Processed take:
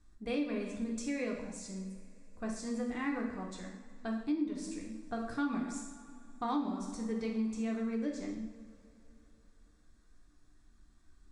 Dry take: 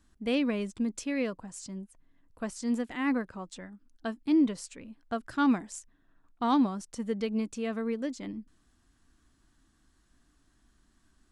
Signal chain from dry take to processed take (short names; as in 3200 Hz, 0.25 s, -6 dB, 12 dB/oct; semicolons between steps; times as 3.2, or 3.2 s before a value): LPF 9500 Hz 24 dB/oct; low shelf 60 Hz +12 dB; notch 3000 Hz, Q 6.3; reverb, pre-delay 3 ms, DRR -1 dB; compressor 4:1, threshold -25 dBFS, peak gain reduction 11 dB; gain -6 dB